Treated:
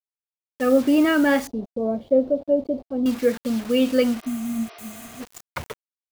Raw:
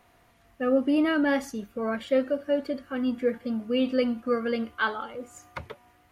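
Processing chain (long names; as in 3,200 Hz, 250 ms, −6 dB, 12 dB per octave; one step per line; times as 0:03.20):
bit reduction 7 bits
0:01.47–0:03.06: drawn EQ curve 680 Hz 0 dB, 1,600 Hz −28 dB, 4,100 Hz −19 dB, 7,600 Hz −30 dB
0:04.25–0:05.18: healed spectral selection 300–6,000 Hz before
level +5.5 dB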